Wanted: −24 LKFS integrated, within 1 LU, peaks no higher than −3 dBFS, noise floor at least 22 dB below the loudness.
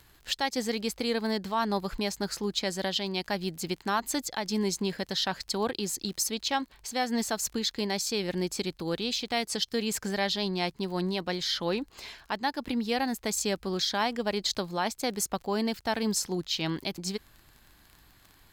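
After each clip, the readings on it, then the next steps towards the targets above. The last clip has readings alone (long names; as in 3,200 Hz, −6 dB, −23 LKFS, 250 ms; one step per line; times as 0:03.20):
crackle rate 27 per second; integrated loudness −30.5 LKFS; sample peak −16.0 dBFS; target loudness −24.0 LKFS
→ click removal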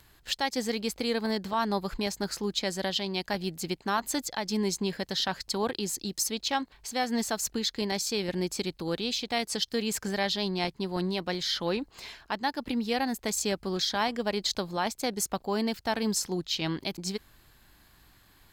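crackle rate 0.43 per second; integrated loudness −30.5 LKFS; sample peak −16.0 dBFS; target loudness −24.0 LKFS
→ level +6.5 dB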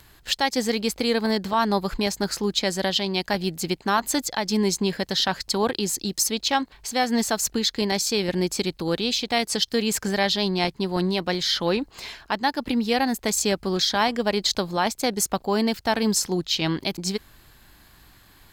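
integrated loudness −24.0 LKFS; sample peak −9.5 dBFS; background noise floor −55 dBFS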